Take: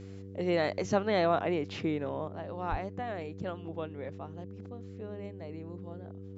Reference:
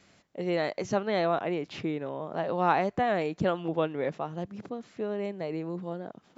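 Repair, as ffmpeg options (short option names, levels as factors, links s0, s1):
-filter_complex "[0:a]bandreject=f=97.2:t=h:w=4,bandreject=f=194.4:t=h:w=4,bandreject=f=291.6:t=h:w=4,bandreject=f=388.8:t=h:w=4,bandreject=f=486:t=h:w=4,asplit=3[s0][s1][s2];[s0]afade=t=out:st=2.7:d=0.02[s3];[s1]highpass=f=140:w=0.5412,highpass=f=140:w=1.3066,afade=t=in:st=2.7:d=0.02,afade=t=out:st=2.82:d=0.02[s4];[s2]afade=t=in:st=2.82:d=0.02[s5];[s3][s4][s5]amix=inputs=3:normalize=0,asetnsamples=n=441:p=0,asendcmd='2.28 volume volume 10.5dB',volume=1"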